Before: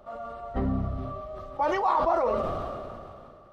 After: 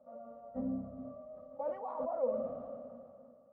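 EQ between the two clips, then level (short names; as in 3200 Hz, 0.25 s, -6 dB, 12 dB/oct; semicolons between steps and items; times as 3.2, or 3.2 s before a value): double band-pass 360 Hz, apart 1.1 oct; air absorption 160 m; bell 400 Hz -4.5 dB 0.2 oct; -1.5 dB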